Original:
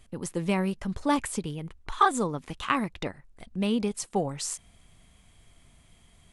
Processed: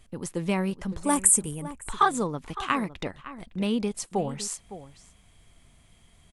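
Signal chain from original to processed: 1.03–1.63 s: resonant high shelf 6.2 kHz +12.5 dB, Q 3; echo from a far wall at 96 m, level -14 dB

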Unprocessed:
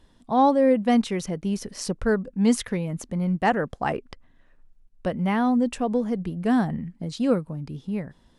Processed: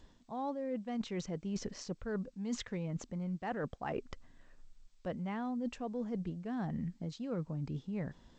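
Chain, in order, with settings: treble shelf 2.9 kHz -3.5 dB; reverse; compression 20:1, threshold -33 dBFS, peak gain reduction 19.5 dB; reverse; trim -1.5 dB; G.722 64 kbps 16 kHz

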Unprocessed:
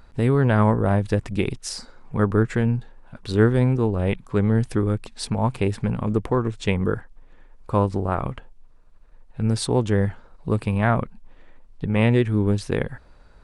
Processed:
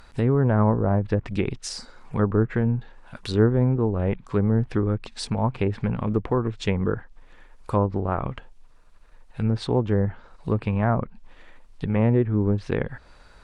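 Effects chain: low-pass that closes with the level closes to 1.2 kHz, closed at -15.5 dBFS; tape noise reduction on one side only encoder only; trim -1.5 dB

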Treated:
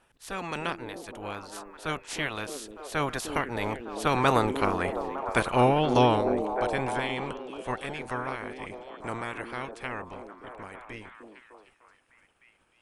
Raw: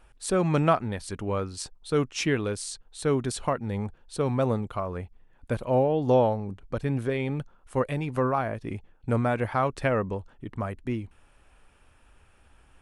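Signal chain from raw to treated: spectral peaks clipped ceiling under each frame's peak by 22 dB; Doppler pass-by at 4.91 s, 12 m/s, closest 10 m; repeats whose band climbs or falls 303 ms, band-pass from 320 Hz, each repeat 0.7 oct, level -3 dB; trim +4.5 dB

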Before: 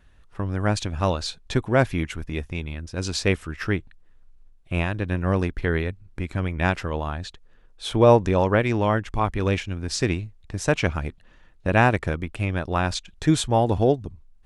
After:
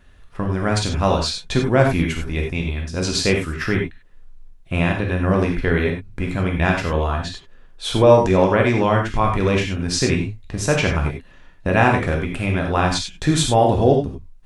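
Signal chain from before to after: in parallel at +3 dB: peak limiter -14 dBFS, peak gain reduction 9.5 dB; on the sum: gated-style reverb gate 120 ms flat, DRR 0.5 dB; trim -3.5 dB

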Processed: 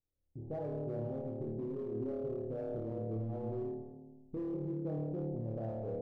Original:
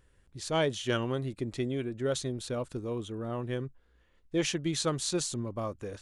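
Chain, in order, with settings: recorder AGC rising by 15 dB/s; gate -46 dBFS, range -22 dB; steep low-pass 840 Hz 96 dB/octave; flutter echo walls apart 4.6 m, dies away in 1.2 s; in parallel at -6 dB: hard clipper -25 dBFS, distortion -10 dB; on the sum: feedback comb 570 Hz, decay 0.54 s, mix 60%; peak limiter -28.5 dBFS, peak gain reduction 9 dB; on a send at -17 dB: peaking EQ 140 Hz +12 dB 2.8 oct + reverberation RT60 0.75 s, pre-delay 110 ms; on the sum: trim -4 dB

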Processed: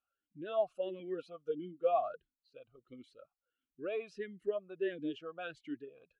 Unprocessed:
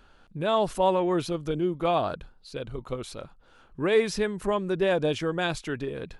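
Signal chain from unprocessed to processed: expander on every frequency bin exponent 1.5; 0.99–1.87 s: comb 4.3 ms, depth 56%; talking filter a-i 1.5 Hz

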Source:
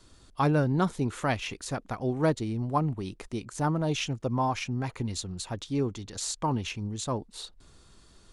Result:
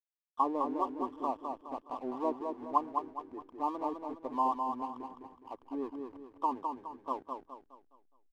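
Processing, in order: FFT band-pass 240–1200 Hz; resonant low shelf 780 Hz -7 dB, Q 1.5; hysteresis with a dead band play -47.5 dBFS; on a send: feedback delay 208 ms, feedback 39%, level -5 dB

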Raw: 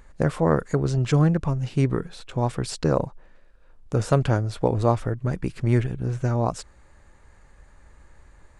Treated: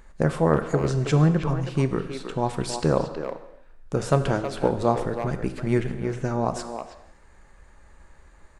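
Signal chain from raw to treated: peaking EQ 110 Hz -14 dB 0.28 oct; speakerphone echo 320 ms, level -7 dB; gated-style reverb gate 330 ms falling, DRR 9 dB

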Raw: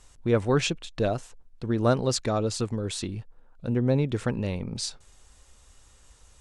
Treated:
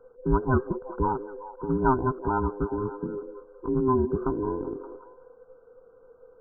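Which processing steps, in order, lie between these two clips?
every band turned upside down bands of 500 Hz; brick-wall FIR low-pass 1.6 kHz; on a send: repeats whose band climbs or falls 190 ms, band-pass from 420 Hz, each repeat 0.7 oct, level -9 dB

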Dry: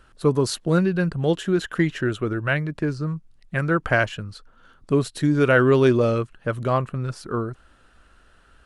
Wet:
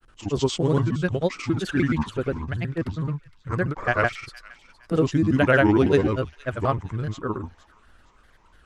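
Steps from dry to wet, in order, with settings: pitch shift switched off and on -5.5 st, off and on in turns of 152 ms; granulator, pitch spread up and down by 3 st; feedback echo behind a high-pass 464 ms, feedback 37%, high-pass 2 kHz, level -16 dB

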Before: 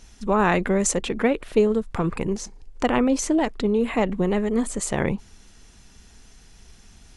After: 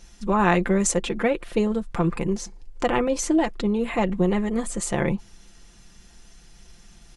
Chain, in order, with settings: comb 5.8 ms, depth 54%; trim -1.5 dB

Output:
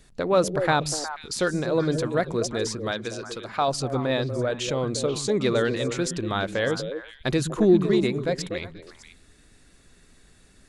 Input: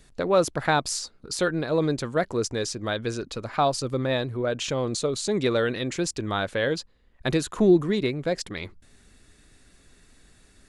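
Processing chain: 2.91–3.68 s: bass shelf 320 Hz -10 dB; repeats whose band climbs or falls 121 ms, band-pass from 160 Hz, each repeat 1.4 oct, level -2.5 dB

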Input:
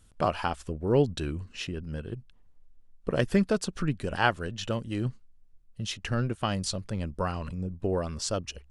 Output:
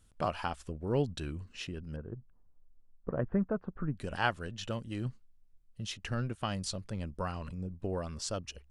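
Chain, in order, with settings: 1.96–3.97 s: low-pass 1.4 kHz 24 dB/octave; dynamic bell 390 Hz, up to -3 dB, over -36 dBFS, Q 1.6; trim -5.5 dB

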